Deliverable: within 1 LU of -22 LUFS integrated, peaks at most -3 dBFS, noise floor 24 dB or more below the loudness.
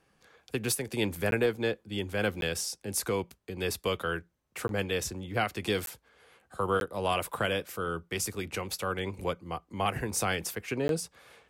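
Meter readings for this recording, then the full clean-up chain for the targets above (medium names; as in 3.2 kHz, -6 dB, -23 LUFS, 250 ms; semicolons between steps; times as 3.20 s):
dropouts 6; longest dropout 12 ms; loudness -32.0 LUFS; peak level -16.0 dBFS; loudness target -22.0 LUFS
-> interpolate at 1.31/2.41/4.68/5.86/6.80/10.88 s, 12 ms; trim +10 dB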